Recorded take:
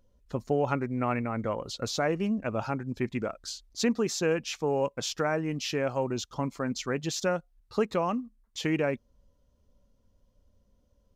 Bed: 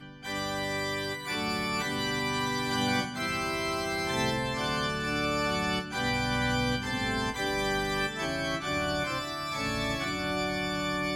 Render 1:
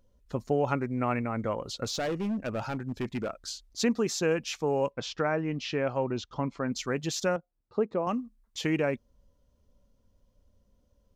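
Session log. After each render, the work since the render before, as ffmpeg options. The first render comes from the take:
ffmpeg -i in.wav -filter_complex "[0:a]asettb=1/sr,asplit=3[link_01][link_02][link_03];[link_01]atrim=end=1.844[link_04];[link_02]atrim=start=1.84:end=3.3,asetpts=PTS-STARTPTS,afade=type=in:duration=0.004:curve=qsin,afade=type=out:start_time=1.456:duration=0.004:curve=qsin,volume=27dB,asoftclip=hard,volume=-27dB[link_05];[link_03]atrim=start=3.296[link_06];[link_04][link_05]acrossfade=duration=0.004:curve1=hsin:curve2=qsin[link_07];[link_07][link_06]acrossfade=duration=0.004:curve1=qsin:curve2=hsin,asplit=3[link_08][link_09][link_10];[link_08]afade=type=out:start_time=4.9:duration=0.02[link_11];[link_09]lowpass=3900,afade=type=in:start_time=4.9:duration=0.02,afade=type=out:start_time=6.71:duration=0.02[link_12];[link_10]afade=type=in:start_time=6.71:duration=0.02[link_13];[link_11][link_12][link_13]amix=inputs=3:normalize=0,asettb=1/sr,asplit=3[link_14][link_15][link_16];[link_14]atrim=end=7.364[link_17];[link_15]atrim=start=7.36:end=8.07,asetpts=PTS-STARTPTS,afade=type=in:duration=0.004:curve=qsin,afade=type=out:start_time=0.706:duration=0.004:curve=qsin,bandpass=frequency=380:width_type=q:width=0.69[link_18];[link_16]atrim=start=8.066[link_19];[link_17][link_18]acrossfade=duration=0.004:curve1=hsin:curve2=qsin[link_20];[link_20][link_19]acrossfade=duration=0.004:curve1=qsin:curve2=hsin" out.wav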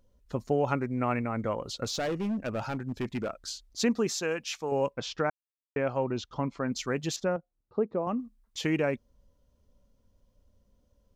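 ffmpeg -i in.wav -filter_complex "[0:a]asettb=1/sr,asplit=3[link_01][link_02][link_03];[link_01]atrim=end=4.124[link_04];[link_02]atrim=start=4.12:end=4.72,asetpts=PTS-STARTPTS,afade=type=in:duration=0.004:curve=qsin,afade=type=out:start_time=0.596:duration=0.004:curve=qsin,lowshelf=frequency=450:gain=-9.5[link_05];[link_03]atrim=start=4.716[link_06];[link_04][link_05]acrossfade=duration=0.004:curve1=hsin:curve2=qsin[link_07];[link_07][link_06]acrossfade=duration=0.004:curve1=qsin:curve2=hsin,asettb=1/sr,asplit=3[link_08][link_09][link_10];[link_08]atrim=end=7.164[link_11];[link_09]atrim=start=7.16:end=8.2,asetpts=PTS-STARTPTS,afade=type=in:duration=0.004:curve=qsin,afade=type=out:start_time=1.036:duration=0.004:curve=qsin,lowpass=frequency=1100:poles=1[link_12];[link_10]atrim=start=8.196[link_13];[link_11][link_12]acrossfade=duration=0.004:curve1=hsin:curve2=qsin[link_14];[link_14][link_13]acrossfade=duration=0.004:curve1=qsin:curve2=hsin,asplit=3[link_15][link_16][link_17];[link_15]atrim=end=5.3,asetpts=PTS-STARTPTS,afade=type=out:start_time=5.296:duration=0.004:curve=hsin[link_18];[link_16]atrim=start=5.3:end=5.76,asetpts=PTS-STARTPTS,volume=0[link_19];[link_17]atrim=start=5.76,asetpts=PTS-STARTPTS,afade=type=in:duration=0.004:curve=hsin[link_20];[link_18][link_19][link_20]concat=n=3:v=0:a=1" out.wav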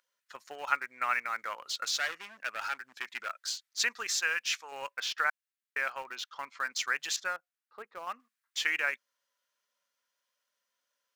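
ffmpeg -i in.wav -filter_complex "[0:a]highpass=frequency=1600:width_type=q:width=2,asplit=2[link_01][link_02];[link_02]aeval=exprs='val(0)*gte(abs(val(0)),0.0141)':channel_layout=same,volume=-9dB[link_03];[link_01][link_03]amix=inputs=2:normalize=0" out.wav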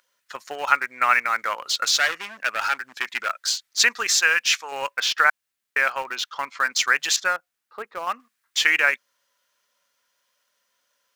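ffmpeg -i in.wav -af "volume=11.5dB,alimiter=limit=-2dB:level=0:latency=1" out.wav

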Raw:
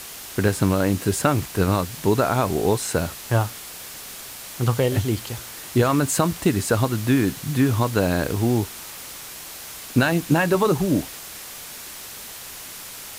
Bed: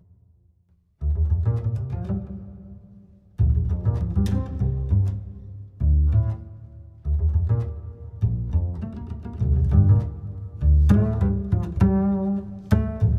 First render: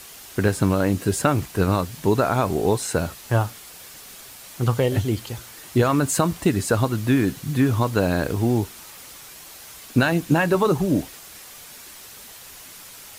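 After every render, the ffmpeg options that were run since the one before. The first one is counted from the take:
ffmpeg -i in.wav -af "afftdn=noise_reduction=6:noise_floor=-38" out.wav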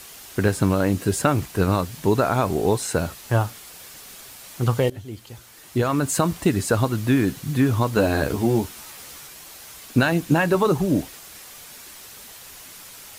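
ffmpeg -i in.wav -filter_complex "[0:a]asettb=1/sr,asplit=3[link_01][link_02][link_03];[link_01]atrim=end=7.944[link_04];[link_02]atrim=start=7.94:end=9.27,asetpts=PTS-STARTPTS,afade=type=in:duration=0.004:curve=qsin,afade=type=out:start_time=1.326:duration=0.004:curve=qsin,asplit=2[link_05][link_06];[link_06]adelay=14,volume=-4dB[link_07];[link_05][link_07]amix=inputs=2:normalize=0,atrim=end_sample=58653[link_08];[link_03]atrim=start=9.266[link_09];[link_04][link_08]acrossfade=duration=0.004:curve1=hsin:curve2=qsin[link_10];[link_10][link_09]acrossfade=duration=0.004:curve1=qsin:curve2=hsin,asplit=2[link_11][link_12];[link_11]atrim=end=4.9,asetpts=PTS-STARTPTS,afade=type=out:start_time=4.896:duration=0.004:curve=hsin:silence=0.11885[link_13];[link_12]atrim=start=4.9,asetpts=PTS-STARTPTS,afade=type=in:duration=1.39:silence=0.11885[link_14];[link_13][link_14]concat=n=2:v=0:a=1" out.wav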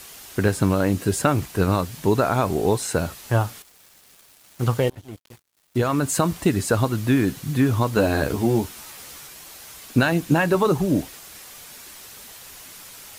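ffmpeg -i in.wav -filter_complex "[0:a]asettb=1/sr,asplit=3[link_01][link_02][link_03];[link_01]atrim=end=3.624[link_04];[link_02]atrim=start=3.62:end=5.77,asetpts=PTS-STARTPTS,afade=type=in:duration=0.004:curve=qsin,afade=type=out:start_time=2.146:duration=0.004:curve=qsin,aeval=exprs='sgn(val(0))*max(abs(val(0))-0.00944,0)':channel_layout=same[link_05];[link_03]atrim=start=5.766[link_06];[link_04][link_05]acrossfade=duration=0.004:curve1=hsin:curve2=qsin[link_07];[link_07][link_06]acrossfade=duration=0.004:curve1=qsin:curve2=hsin" out.wav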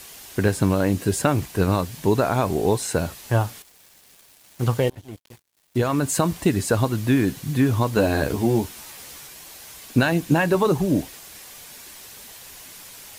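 ffmpeg -i in.wav -af "equalizer=frequency=1300:width_type=o:width=0.23:gain=-4.5" out.wav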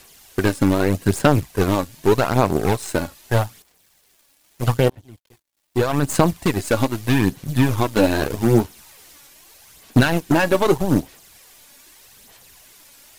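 ffmpeg -i in.wav -af "aeval=exprs='0.447*(cos(1*acos(clip(val(0)/0.447,-1,1)))-cos(1*PI/2))+0.0891*(cos(5*acos(clip(val(0)/0.447,-1,1)))-cos(5*PI/2))+0.1*(cos(7*acos(clip(val(0)/0.447,-1,1)))-cos(7*PI/2))+0.0251*(cos(8*acos(clip(val(0)/0.447,-1,1)))-cos(8*PI/2))':channel_layout=same,aphaser=in_gain=1:out_gain=1:delay=3.6:decay=0.41:speed=0.81:type=sinusoidal" out.wav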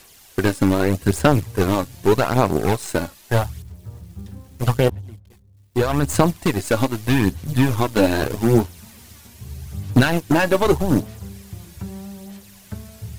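ffmpeg -i in.wav -i bed.wav -filter_complex "[1:a]volume=-14dB[link_01];[0:a][link_01]amix=inputs=2:normalize=0" out.wav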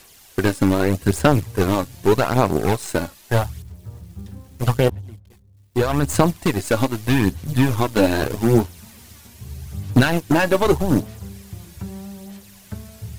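ffmpeg -i in.wav -af anull out.wav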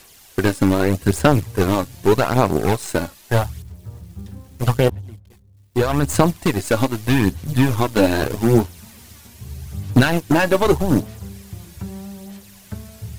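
ffmpeg -i in.wav -af "volume=1dB" out.wav

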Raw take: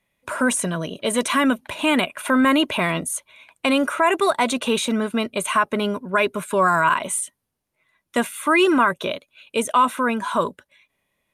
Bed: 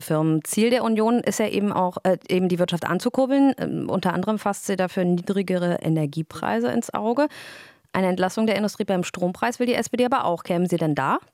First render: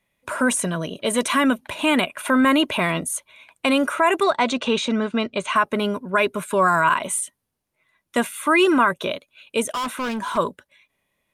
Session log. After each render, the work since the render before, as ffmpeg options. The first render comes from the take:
ffmpeg -i in.wav -filter_complex "[0:a]asettb=1/sr,asplit=3[link_01][link_02][link_03];[link_01]atrim=end=4.234[link_04];[link_02]atrim=start=4.23:end=5.56,asetpts=PTS-STARTPTS,afade=type=in:duration=0.004:curve=qsin,afade=type=out:start_time=1.326:duration=0.004:curve=qsin,lowpass=frequency=6500:width=0.5412,lowpass=frequency=6500:width=1.3066[link_05];[link_03]atrim=start=5.556[link_06];[link_04][link_05]acrossfade=duration=0.004:curve1=hsin:curve2=qsin[link_07];[link_07][link_06]acrossfade=duration=0.004:curve1=qsin:curve2=hsin,asplit=3[link_08][link_09][link_10];[link_08]afade=type=out:start_time=9.69:duration=0.02[link_11];[link_09]asoftclip=type=hard:threshold=-23.5dB,afade=type=in:start_time=9.69:duration=0.02,afade=type=out:start_time=10.36:duration=0.02[link_12];[link_10]afade=type=in:start_time=10.36:duration=0.02[link_13];[link_11][link_12][link_13]amix=inputs=3:normalize=0" out.wav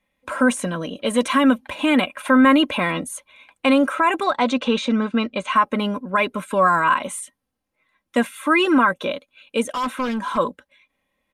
ffmpeg -i in.wav -af "highshelf=frequency=5400:gain=-9.5,aecho=1:1:3.8:0.55" out.wav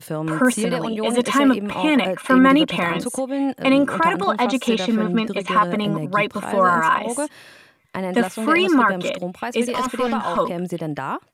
ffmpeg -i in.wav -i bed.wav -filter_complex "[1:a]volume=-4.5dB[link_01];[0:a][link_01]amix=inputs=2:normalize=0" out.wav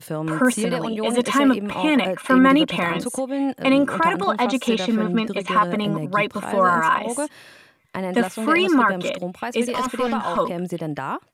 ffmpeg -i in.wav -af "volume=-1dB" out.wav

